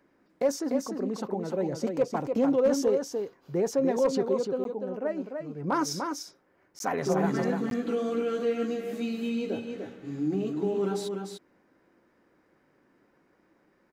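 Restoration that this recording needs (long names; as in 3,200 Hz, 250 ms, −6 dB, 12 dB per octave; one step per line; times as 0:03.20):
clipped peaks rebuilt −16.5 dBFS
repair the gap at 0:04.64/0:06.79/0:07.70, 12 ms
echo removal 296 ms −5.5 dB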